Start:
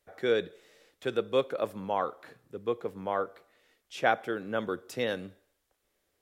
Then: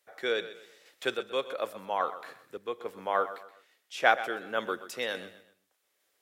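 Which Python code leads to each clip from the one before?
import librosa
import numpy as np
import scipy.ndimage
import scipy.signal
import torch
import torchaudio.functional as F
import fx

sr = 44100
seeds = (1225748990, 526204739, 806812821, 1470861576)

y = fx.highpass(x, sr, hz=970.0, slope=6)
y = fx.tremolo_random(y, sr, seeds[0], hz=3.5, depth_pct=55)
y = fx.echo_feedback(y, sr, ms=126, feedback_pct=35, wet_db=-14.0)
y = F.gain(torch.from_numpy(y), 8.0).numpy()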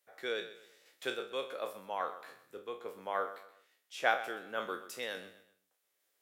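y = fx.spec_trails(x, sr, decay_s=0.32)
y = fx.high_shelf(y, sr, hz=9500.0, db=6.0)
y = F.gain(torch.from_numpy(y), -7.5).numpy()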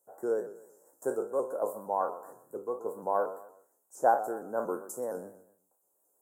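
y = scipy.signal.sosfilt(scipy.signal.ellip(3, 1.0, 50, [1100.0, 7500.0], 'bandstop', fs=sr, output='sos'), x)
y = fx.notch_comb(y, sr, f0_hz=1200.0)
y = fx.vibrato_shape(y, sr, shape='saw_up', rate_hz=4.3, depth_cents=100.0)
y = F.gain(torch.from_numpy(y), 9.0).numpy()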